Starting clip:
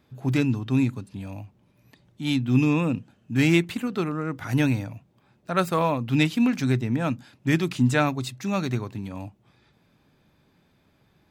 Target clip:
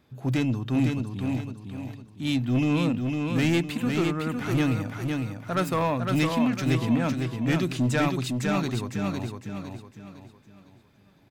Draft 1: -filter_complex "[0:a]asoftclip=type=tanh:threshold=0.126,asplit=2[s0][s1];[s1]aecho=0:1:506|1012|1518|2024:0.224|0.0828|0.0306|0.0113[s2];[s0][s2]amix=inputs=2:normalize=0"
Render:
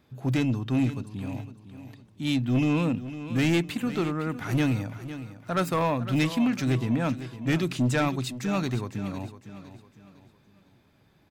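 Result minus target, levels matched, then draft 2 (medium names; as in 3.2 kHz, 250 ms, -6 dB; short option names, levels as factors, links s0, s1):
echo-to-direct -8.5 dB
-filter_complex "[0:a]asoftclip=type=tanh:threshold=0.126,asplit=2[s0][s1];[s1]aecho=0:1:506|1012|1518|2024|2530:0.596|0.22|0.0815|0.0302|0.0112[s2];[s0][s2]amix=inputs=2:normalize=0"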